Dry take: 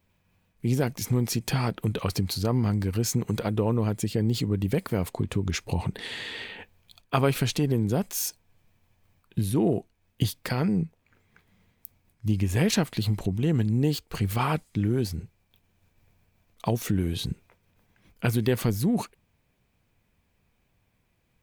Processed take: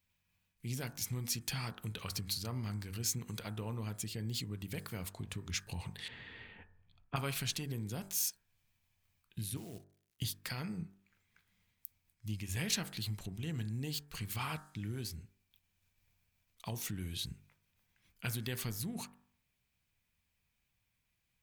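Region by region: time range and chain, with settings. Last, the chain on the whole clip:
6.08–7.16 s: low-pass 1.6 kHz + bass shelf 330 Hz +11 dB
9.57–10.22 s: level held to a coarse grid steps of 15 dB + companded quantiser 6-bit
whole clip: amplifier tone stack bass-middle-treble 5-5-5; de-hum 48.69 Hz, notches 38; trim +1.5 dB

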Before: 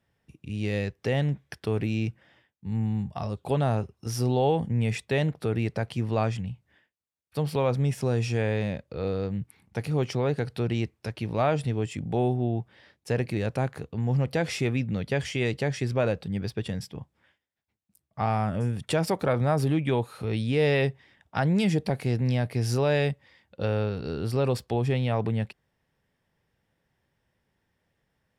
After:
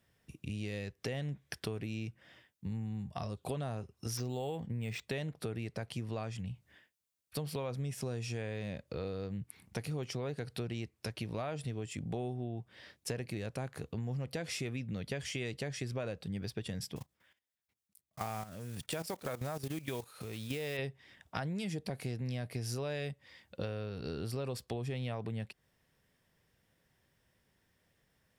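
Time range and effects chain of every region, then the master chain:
4.17–5.04 s: dynamic bell 3.4 kHz, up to +3 dB, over -43 dBFS, Q 0.81 + decimation joined by straight lines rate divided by 4×
16.96–20.79 s: block-companded coder 5-bit + bass shelf 390 Hz -4.5 dB + level held to a coarse grid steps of 14 dB
whole clip: treble shelf 4 kHz +8 dB; band-stop 850 Hz, Q 13; compression 6:1, threshold -36 dBFS

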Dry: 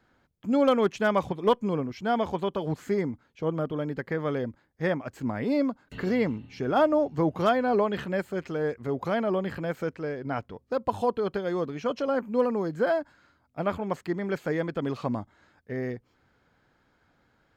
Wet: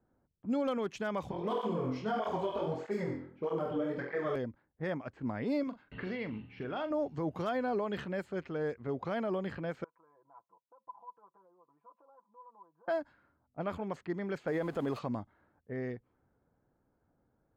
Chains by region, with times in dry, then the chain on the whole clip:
1.31–4.36 s: peaking EQ 740 Hz +3.5 dB 1.8 oct + flutter echo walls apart 4 m, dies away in 0.63 s + cancelling through-zero flanger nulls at 1.6 Hz, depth 5.8 ms
5.63–6.91 s: peaking EQ 2.8 kHz +9.5 dB 1.5 oct + compression 4:1, threshold -29 dBFS + doubling 42 ms -10.5 dB
9.84–12.88 s: comb 6 ms, depth 99% + compression 16:1, threshold -28 dBFS + band-pass filter 1 kHz, Q 12
14.47–14.99 s: jump at every zero crossing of -43.5 dBFS + peaking EQ 720 Hz +7 dB 2 oct + band-stop 5.7 kHz, Q 11
whole clip: level-controlled noise filter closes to 730 Hz, open at -23 dBFS; peak limiter -19 dBFS; trim -6 dB

